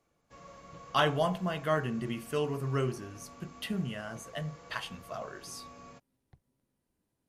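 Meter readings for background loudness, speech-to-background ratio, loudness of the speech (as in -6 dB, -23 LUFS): -52.0 LUFS, 18.5 dB, -33.5 LUFS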